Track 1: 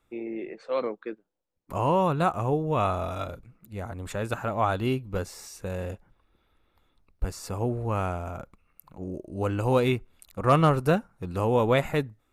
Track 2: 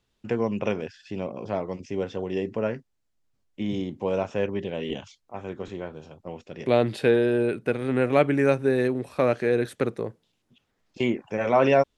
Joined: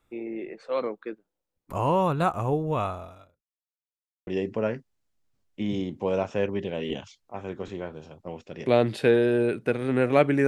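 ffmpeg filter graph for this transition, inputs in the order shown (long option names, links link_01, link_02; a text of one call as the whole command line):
ffmpeg -i cue0.wav -i cue1.wav -filter_complex "[0:a]apad=whole_dur=10.47,atrim=end=10.47,asplit=2[link_01][link_02];[link_01]atrim=end=3.45,asetpts=PTS-STARTPTS,afade=type=out:start_time=2.7:duration=0.75:curve=qua[link_03];[link_02]atrim=start=3.45:end=4.27,asetpts=PTS-STARTPTS,volume=0[link_04];[1:a]atrim=start=2.27:end=8.47,asetpts=PTS-STARTPTS,afade=type=in:duration=0.004:curve=hsin[link_05];[link_03][link_04][link_05]concat=n=3:v=0:a=1" out.wav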